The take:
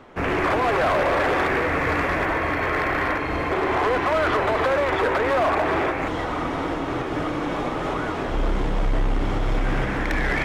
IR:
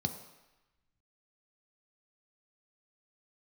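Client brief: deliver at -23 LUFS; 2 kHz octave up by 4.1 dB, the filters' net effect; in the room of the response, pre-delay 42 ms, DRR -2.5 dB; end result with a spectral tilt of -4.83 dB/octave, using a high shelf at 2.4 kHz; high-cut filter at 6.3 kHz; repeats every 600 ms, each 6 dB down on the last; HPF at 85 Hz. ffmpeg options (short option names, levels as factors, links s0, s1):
-filter_complex "[0:a]highpass=85,lowpass=6300,equalizer=f=2000:t=o:g=3.5,highshelf=f=2400:g=3.5,aecho=1:1:600|1200|1800|2400|3000|3600:0.501|0.251|0.125|0.0626|0.0313|0.0157,asplit=2[s0][s1];[1:a]atrim=start_sample=2205,adelay=42[s2];[s1][s2]afir=irnorm=-1:irlink=0,volume=1[s3];[s0][s3]amix=inputs=2:normalize=0,volume=0.355"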